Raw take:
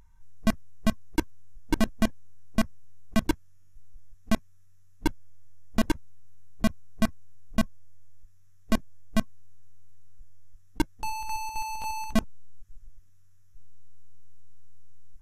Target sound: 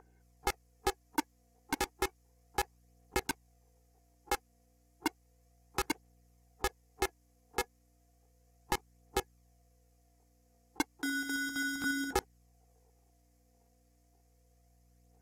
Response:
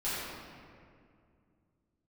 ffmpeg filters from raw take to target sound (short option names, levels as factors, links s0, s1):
-filter_complex "[0:a]highpass=f=130:w=0.5412,highpass=f=130:w=1.3066,equalizer=f=2600:w=1.2:g=-6,acrossover=split=970[s0][s1];[s0]acompressor=threshold=0.02:ratio=6[s2];[s2][s1]amix=inputs=2:normalize=0,aeval=exprs='val(0)*sin(2*PI*600*n/s)':c=same,aeval=exprs='val(0)+0.000282*(sin(2*PI*60*n/s)+sin(2*PI*2*60*n/s)/2+sin(2*PI*3*60*n/s)/3+sin(2*PI*4*60*n/s)/4+sin(2*PI*5*60*n/s)/5)':c=same,aphaser=in_gain=1:out_gain=1:delay=4.3:decay=0.33:speed=0.33:type=triangular,volume=1.41"